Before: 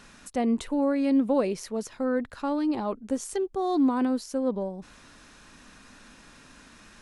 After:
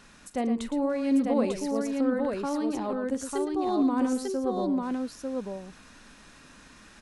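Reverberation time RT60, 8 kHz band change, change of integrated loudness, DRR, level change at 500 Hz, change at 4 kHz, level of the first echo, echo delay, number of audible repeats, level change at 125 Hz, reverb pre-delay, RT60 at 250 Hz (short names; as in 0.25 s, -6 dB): none, -0.5 dB, -1.0 dB, none, -0.5 dB, -0.5 dB, -15.5 dB, 41 ms, 3, n/a, none, none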